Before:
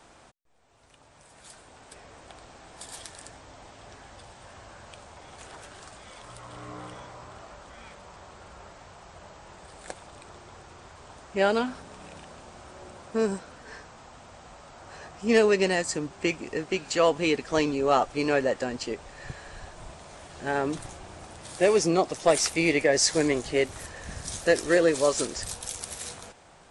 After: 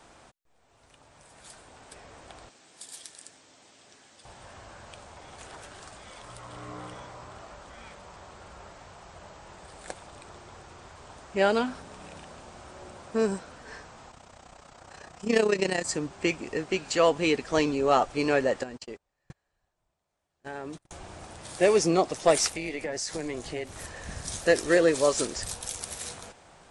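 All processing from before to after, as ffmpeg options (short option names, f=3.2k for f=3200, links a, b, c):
-filter_complex "[0:a]asettb=1/sr,asplit=3[a][b][c];[a]atrim=end=2.494[d];[b]atrim=start=2.49:end=4.25,asetpts=PTS-STARTPTS,afade=t=in:d=0.004:c=qsin,afade=t=out:st=1.756:d=0.004:c=qsin,highpass=270,equalizer=f=830:w=0.47:g=-12[e];[c]atrim=start=4.246[f];[d][e]acrossfade=d=0.004:c1=hsin:c2=qsin[g];[g][f]acrossfade=d=0.004:c1=qsin:c2=hsin,asettb=1/sr,asplit=3[h][i][j];[h]atrim=end=14.114[k];[i]atrim=start=14.11:end=15.85,asetpts=PTS-STARTPTS,afade=t=in:d=0.004:c=qsin,afade=t=out:st=1.736:d=0.004:c=qsin,highshelf=f=5.8k:g=4,tremolo=f=31:d=0.75[l];[j]atrim=start=15.846[m];[k][l]acrossfade=d=0.004:c1=hsin:c2=qsin[n];[n][m]acrossfade=d=0.004:c1=qsin:c2=hsin,asettb=1/sr,asplit=3[o][p][q];[o]atrim=end=18.634[r];[p]atrim=start=18.63:end=20.91,asetpts=PTS-STARTPTS,afade=t=in:d=0.004:c=qsin,afade=t=out:st=2.276:d=0.004:c=qsin,agate=range=-36dB:threshold=-35dB:ratio=16:release=100:detection=peak,acompressor=threshold=-42dB:ratio=2:attack=3.2:release=140:knee=1:detection=peak[s];[q]atrim=start=20.906[t];[r][s]acrossfade=d=0.004:c1=hsin:c2=qsin[u];[u][t]acrossfade=d=0.004:c1=qsin:c2=hsin,asettb=1/sr,asplit=3[v][w][x];[v]atrim=end=22.474[y];[w]atrim=start=22.47:end=23.78,asetpts=PTS-STARTPTS,afade=t=in:d=0.004:c=qsin,afade=t=out:st=1.306:d=0.004:c=qsin,tremolo=f=290:d=0.519,acompressor=threshold=-30dB:ratio=4:attack=3.2:release=140:knee=1:detection=peak[z];[x]atrim=start=23.776[aa];[y][z]acrossfade=d=0.004:c1=hsin:c2=qsin[ab];[ab][aa]acrossfade=d=0.004:c1=qsin:c2=hsin"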